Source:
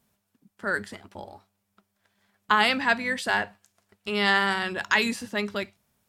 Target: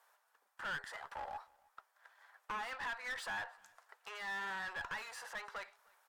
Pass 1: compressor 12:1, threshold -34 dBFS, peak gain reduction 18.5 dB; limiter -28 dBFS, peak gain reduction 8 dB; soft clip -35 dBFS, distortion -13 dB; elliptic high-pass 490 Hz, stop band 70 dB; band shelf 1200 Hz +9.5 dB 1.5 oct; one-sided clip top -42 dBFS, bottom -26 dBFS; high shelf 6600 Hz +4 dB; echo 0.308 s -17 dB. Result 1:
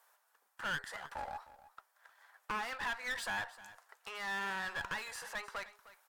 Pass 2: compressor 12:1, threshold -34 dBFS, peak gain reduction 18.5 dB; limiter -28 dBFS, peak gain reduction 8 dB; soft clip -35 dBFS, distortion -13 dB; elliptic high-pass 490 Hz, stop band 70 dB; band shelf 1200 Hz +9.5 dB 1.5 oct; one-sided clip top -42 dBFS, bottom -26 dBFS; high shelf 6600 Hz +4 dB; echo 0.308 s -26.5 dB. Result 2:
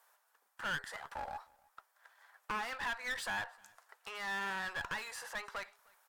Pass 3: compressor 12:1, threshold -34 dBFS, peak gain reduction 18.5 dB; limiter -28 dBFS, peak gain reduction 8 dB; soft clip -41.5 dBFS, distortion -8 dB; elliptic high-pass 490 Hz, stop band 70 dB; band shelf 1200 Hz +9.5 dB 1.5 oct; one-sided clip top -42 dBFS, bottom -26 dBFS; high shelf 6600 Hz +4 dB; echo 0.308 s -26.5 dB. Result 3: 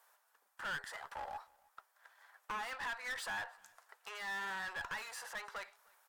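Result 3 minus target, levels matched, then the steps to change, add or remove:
8000 Hz band +3.5 dB
change: high shelf 6600 Hz -3 dB

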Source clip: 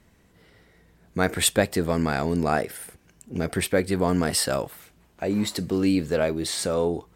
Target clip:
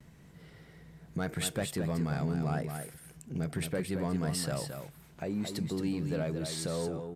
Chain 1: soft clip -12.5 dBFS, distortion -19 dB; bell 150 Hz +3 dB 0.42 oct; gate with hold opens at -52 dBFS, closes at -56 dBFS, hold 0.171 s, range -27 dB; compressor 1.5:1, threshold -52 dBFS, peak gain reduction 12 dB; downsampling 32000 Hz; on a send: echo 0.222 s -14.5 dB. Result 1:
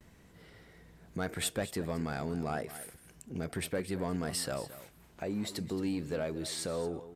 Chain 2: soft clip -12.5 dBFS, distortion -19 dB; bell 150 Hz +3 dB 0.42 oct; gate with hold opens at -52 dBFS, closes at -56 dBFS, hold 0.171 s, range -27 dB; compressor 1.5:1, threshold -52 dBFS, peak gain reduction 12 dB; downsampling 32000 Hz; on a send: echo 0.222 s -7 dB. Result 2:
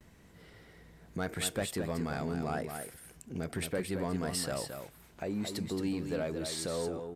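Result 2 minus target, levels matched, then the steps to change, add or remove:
125 Hz band -4.0 dB
change: bell 150 Hz +14.5 dB 0.42 oct

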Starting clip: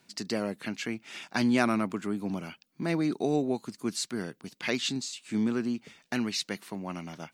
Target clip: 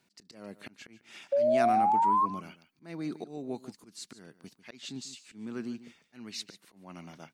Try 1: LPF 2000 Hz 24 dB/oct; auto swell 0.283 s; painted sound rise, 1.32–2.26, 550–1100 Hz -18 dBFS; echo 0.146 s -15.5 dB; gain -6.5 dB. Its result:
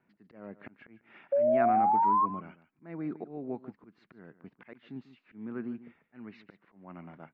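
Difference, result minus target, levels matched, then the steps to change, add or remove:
2000 Hz band -3.0 dB
remove: LPF 2000 Hz 24 dB/oct

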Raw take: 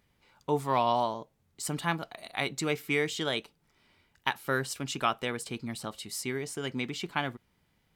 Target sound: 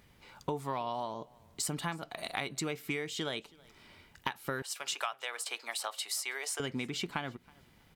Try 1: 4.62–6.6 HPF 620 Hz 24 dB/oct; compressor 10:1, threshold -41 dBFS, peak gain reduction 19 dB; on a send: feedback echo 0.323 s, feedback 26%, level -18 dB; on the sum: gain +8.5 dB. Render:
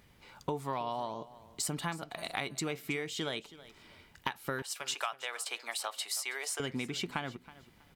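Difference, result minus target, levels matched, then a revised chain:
echo-to-direct +7.5 dB
4.62–6.6 HPF 620 Hz 24 dB/oct; compressor 10:1, threshold -41 dBFS, peak gain reduction 19 dB; on a send: feedback echo 0.323 s, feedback 26%, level -25.5 dB; on the sum: gain +8.5 dB

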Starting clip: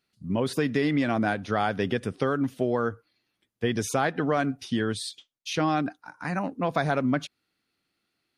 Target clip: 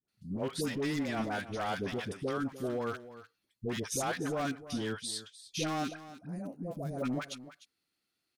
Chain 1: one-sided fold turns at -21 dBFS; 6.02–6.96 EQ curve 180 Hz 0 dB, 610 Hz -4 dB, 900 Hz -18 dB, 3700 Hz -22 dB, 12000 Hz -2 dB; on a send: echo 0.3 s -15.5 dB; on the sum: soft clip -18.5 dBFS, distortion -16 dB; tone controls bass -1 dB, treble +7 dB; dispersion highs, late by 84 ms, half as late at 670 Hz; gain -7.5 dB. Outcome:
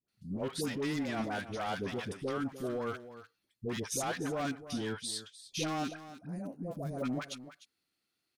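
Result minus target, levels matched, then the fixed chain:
soft clip: distortion +10 dB
one-sided fold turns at -21 dBFS; 6.02–6.96 EQ curve 180 Hz 0 dB, 610 Hz -4 dB, 900 Hz -18 dB, 3700 Hz -22 dB, 12000 Hz -2 dB; on a send: echo 0.3 s -15.5 dB; on the sum: soft clip -11.5 dBFS, distortion -27 dB; tone controls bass -1 dB, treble +7 dB; dispersion highs, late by 84 ms, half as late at 670 Hz; gain -7.5 dB

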